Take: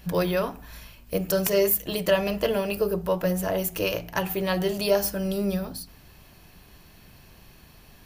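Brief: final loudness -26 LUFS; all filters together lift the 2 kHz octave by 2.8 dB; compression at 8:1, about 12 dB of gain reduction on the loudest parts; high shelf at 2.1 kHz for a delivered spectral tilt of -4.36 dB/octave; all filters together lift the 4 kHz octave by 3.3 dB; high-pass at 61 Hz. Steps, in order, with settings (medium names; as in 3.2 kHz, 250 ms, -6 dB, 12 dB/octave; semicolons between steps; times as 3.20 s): high-pass 61 Hz; peaking EQ 2 kHz +4 dB; treble shelf 2.1 kHz -4 dB; peaking EQ 4 kHz +7 dB; compression 8:1, threshold -29 dBFS; trim +7.5 dB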